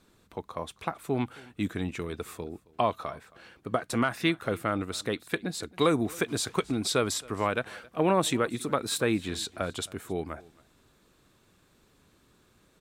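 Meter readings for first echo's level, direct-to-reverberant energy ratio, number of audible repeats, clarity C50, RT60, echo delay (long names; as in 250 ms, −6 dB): −23.5 dB, no reverb audible, 1, no reverb audible, no reverb audible, 270 ms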